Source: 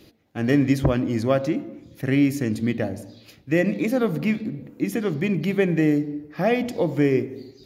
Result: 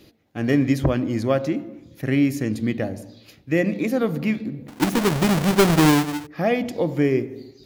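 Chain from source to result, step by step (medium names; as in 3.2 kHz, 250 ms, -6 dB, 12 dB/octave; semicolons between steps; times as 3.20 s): 4.68–6.27 s: square wave that keeps the level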